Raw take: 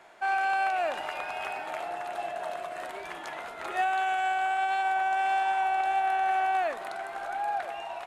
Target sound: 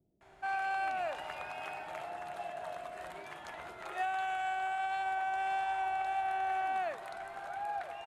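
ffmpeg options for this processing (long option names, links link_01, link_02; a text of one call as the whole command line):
ffmpeg -i in.wav -filter_complex "[0:a]equalizer=frequency=91:width_type=o:width=2.4:gain=10.5,acrossover=split=320[link_01][link_02];[link_02]adelay=210[link_03];[link_01][link_03]amix=inputs=2:normalize=0,volume=-7.5dB" out.wav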